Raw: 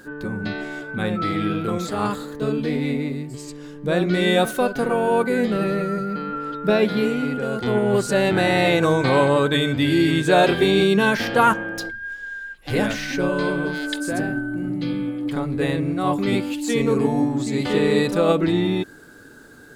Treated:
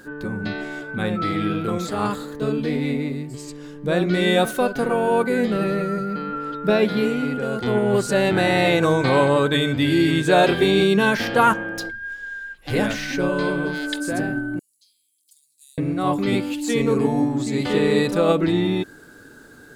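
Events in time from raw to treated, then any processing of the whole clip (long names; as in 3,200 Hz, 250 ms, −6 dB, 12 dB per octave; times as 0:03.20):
0:14.59–0:15.78: inverse Chebyshev high-pass filter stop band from 1,500 Hz, stop band 70 dB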